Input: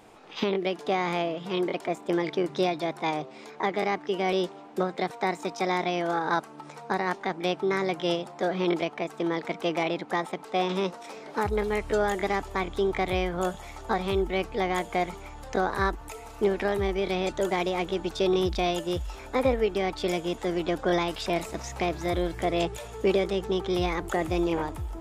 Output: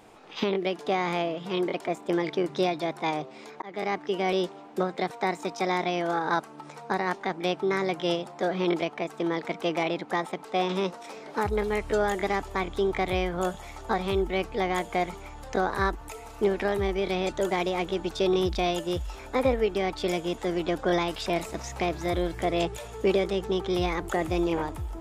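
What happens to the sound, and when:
0:03.62–0:04.05: fade in equal-power

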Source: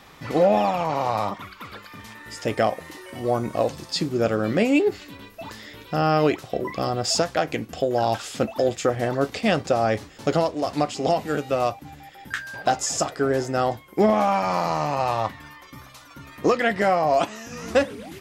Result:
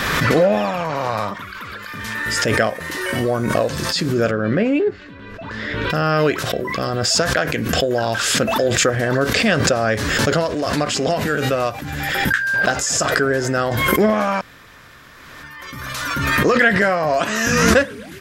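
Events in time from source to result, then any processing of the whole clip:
0:04.31–0:05.90: head-to-tape spacing loss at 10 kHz 26 dB
0:14.41–0:15.43: fill with room tone
whole clip: thirty-one-band graphic EQ 315 Hz −4 dB, 800 Hz −9 dB, 1,600 Hz +9 dB; background raised ahead of every attack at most 25 dB per second; level +3.5 dB

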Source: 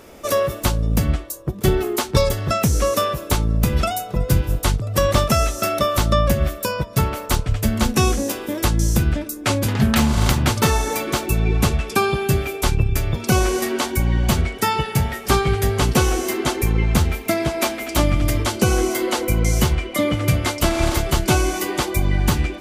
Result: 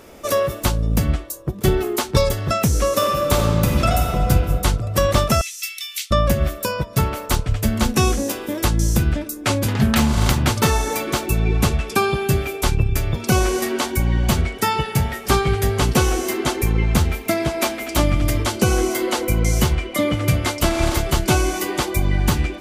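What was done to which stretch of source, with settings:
0:02.89–0:04.28: thrown reverb, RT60 2.8 s, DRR 0 dB
0:05.41–0:06.11: elliptic high-pass filter 2,200 Hz, stop band 80 dB

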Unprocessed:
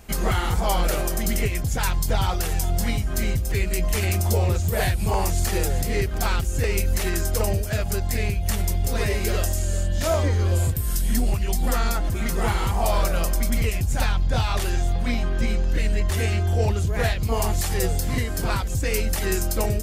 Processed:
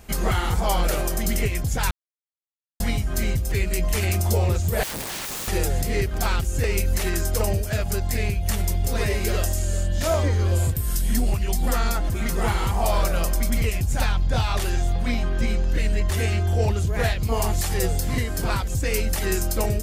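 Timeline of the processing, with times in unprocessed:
0:01.91–0:02.80: silence
0:04.83–0:05.48: wrap-around overflow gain 26.5 dB

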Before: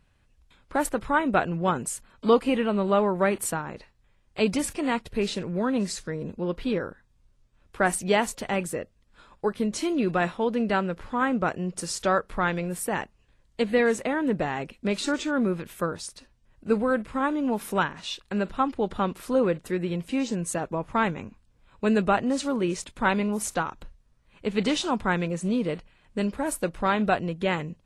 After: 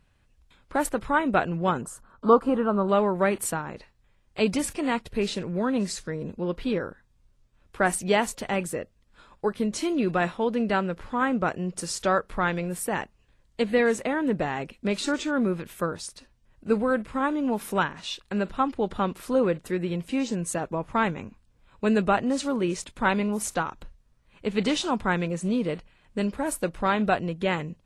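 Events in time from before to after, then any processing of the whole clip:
0:01.81–0:02.89: high shelf with overshoot 1,700 Hz −8.5 dB, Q 3

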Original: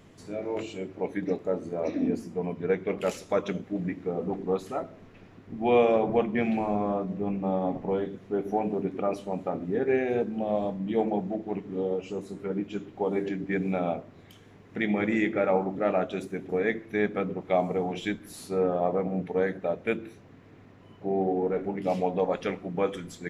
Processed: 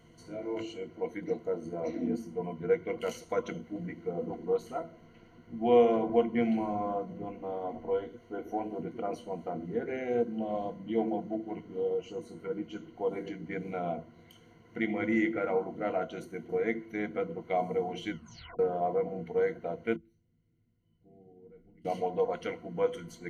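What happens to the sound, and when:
0:07.25–0:08.79: parametric band 170 Hz −11.5 dB 0.46 octaves
0:18.10: tape stop 0.49 s
0:19.96–0:21.85: guitar amp tone stack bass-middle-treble 10-0-1
whole clip: EQ curve with evenly spaced ripples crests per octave 1.9, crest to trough 15 dB; level −7 dB

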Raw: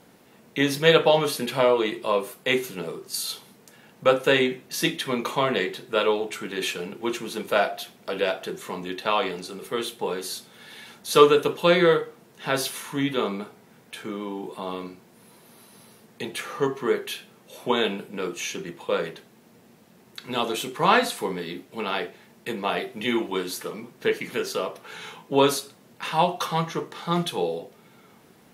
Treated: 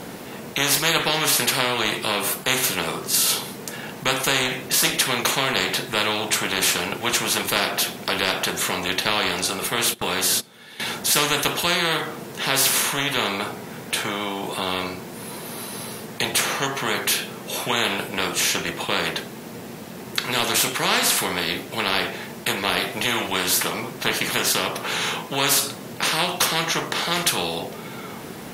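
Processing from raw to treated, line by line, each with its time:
0:09.75–0:10.80: noise gate −41 dBFS, range −17 dB
whole clip: every bin compressed towards the loudest bin 4 to 1

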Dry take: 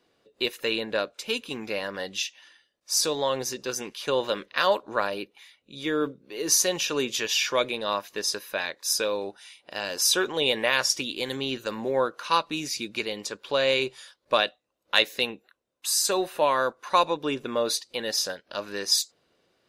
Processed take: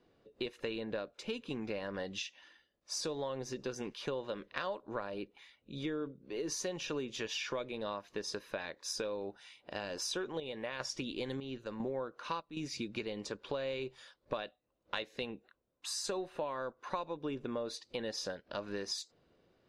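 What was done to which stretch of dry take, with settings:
0:09.80–0:12.57: square-wave tremolo 1 Hz, depth 65%, duty 60%
whole clip: low-pass filter 7,900 Hz 12 dB per octave; spectral tilt −2.5 dB per octave; downward compressor 6 to 1, threshold −32 dBFS; level −3.5 dB

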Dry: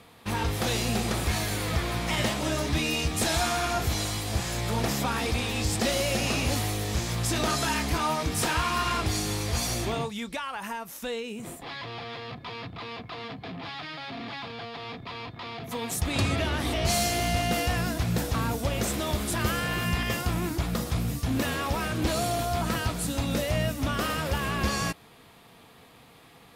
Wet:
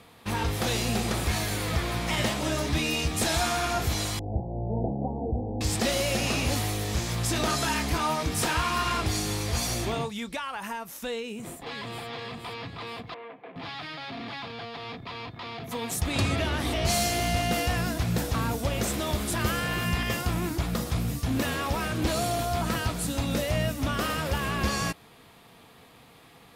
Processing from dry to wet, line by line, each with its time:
0:04.19–0:05.61: Butterworth low-pass 830 Hz 72 dB per octave
0:11.19–0:12.08: delay throw 470 ms, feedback 55%, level −7 dB
0:13.14–0:13.56: loudspeaker in its box 470–2,100 Hz, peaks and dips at 500 Hz +4 dB, 790 Hz −5 dB, 1,300 Hz −7 dB, 1,800 Hz −5 dB

